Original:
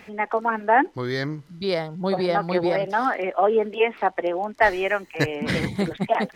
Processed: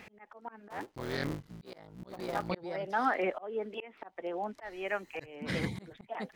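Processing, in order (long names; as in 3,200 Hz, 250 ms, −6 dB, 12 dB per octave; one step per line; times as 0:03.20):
0:00.70–0:02.51: sub-harmonics by changed cycles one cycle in 3, muted
volume swells 642 ms
level −4.5 dB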